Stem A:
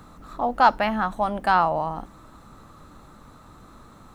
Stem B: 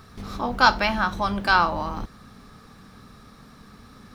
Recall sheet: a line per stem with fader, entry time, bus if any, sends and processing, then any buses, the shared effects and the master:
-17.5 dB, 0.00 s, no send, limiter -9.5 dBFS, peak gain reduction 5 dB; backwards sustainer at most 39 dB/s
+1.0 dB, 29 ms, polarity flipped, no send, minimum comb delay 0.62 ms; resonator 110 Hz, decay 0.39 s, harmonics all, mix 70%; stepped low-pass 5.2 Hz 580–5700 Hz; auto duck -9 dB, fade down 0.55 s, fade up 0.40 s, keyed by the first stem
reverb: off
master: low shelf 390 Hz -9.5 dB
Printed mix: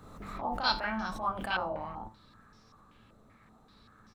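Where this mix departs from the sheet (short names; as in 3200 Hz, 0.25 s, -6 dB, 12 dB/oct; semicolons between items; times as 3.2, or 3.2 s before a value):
stem B: missing minimum comb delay 0.62 ms; master: missing low shelf 390 Hz -9.5 dB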